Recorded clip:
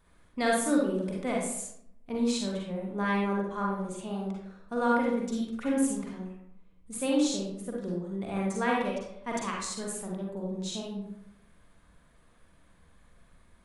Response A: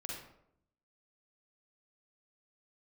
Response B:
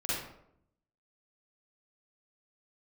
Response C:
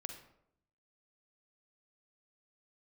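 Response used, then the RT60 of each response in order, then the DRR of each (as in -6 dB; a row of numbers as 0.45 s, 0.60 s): A; 0.75 s, 0.75 s, 0.75 s; -3.0 dB, -10.0 dB, 5.5 dB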